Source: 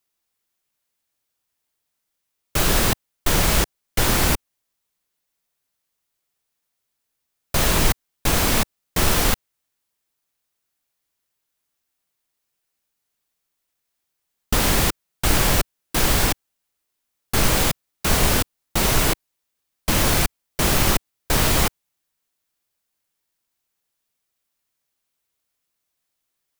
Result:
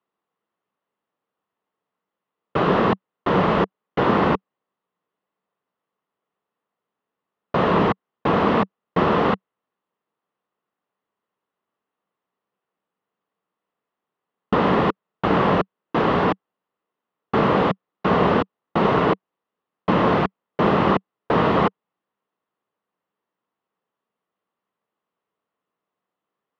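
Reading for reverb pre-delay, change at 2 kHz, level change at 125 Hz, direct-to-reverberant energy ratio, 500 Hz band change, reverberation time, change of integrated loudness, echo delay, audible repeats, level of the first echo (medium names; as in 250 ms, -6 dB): no reverb, -2.5 dB, -1.5 dB, no reverb, +7.0 dB, no reverb, -0.5 dB, no echo, no echo, no echo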